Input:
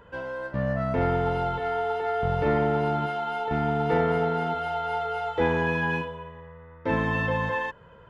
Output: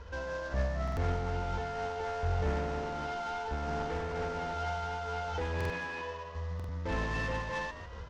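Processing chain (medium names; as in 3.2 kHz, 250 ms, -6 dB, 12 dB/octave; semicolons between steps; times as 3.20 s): CVSD coder 32 kbps; saturation -24 dBFS, distortion -12 dB; 5.68–6.35 s: tone controls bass -15 dB, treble -5 dB; peak limiter -31.5 dBFS, peak gain reduction 9 dB; resonant low shelf 100 Hz +9.5 dB, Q 3; frequency-shifting echo 150 ms, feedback 37%, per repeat +94 Hz, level -12.5 dB; buffer glitch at 0.83/5.56/6.55 s, samples 2048, times 2; random flutter of the level, depth 55%; trim +4 dB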